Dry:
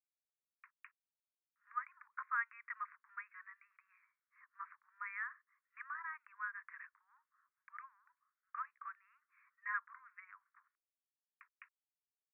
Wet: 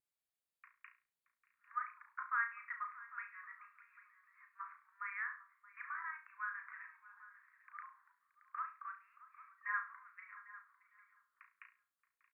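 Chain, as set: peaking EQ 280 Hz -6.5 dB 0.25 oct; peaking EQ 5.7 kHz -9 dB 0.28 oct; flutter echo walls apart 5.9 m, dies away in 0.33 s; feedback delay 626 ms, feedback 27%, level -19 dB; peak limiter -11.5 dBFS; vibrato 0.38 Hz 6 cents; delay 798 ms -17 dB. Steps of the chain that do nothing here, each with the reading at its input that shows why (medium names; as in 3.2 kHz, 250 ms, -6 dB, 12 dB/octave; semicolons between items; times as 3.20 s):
peaking EQ 280 Hz: input has nothing below 850 Hz; peaking EQ 5.7 kHz: input has nothing above 2.6 kHz; peak limiter -11.5 dBFS: peak at its input -23.0 dBFS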